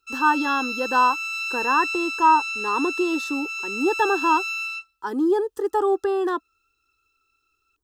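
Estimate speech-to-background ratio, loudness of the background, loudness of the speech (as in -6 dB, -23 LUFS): 4.0 dB, -27.0 LUFS, -23.0 LUFS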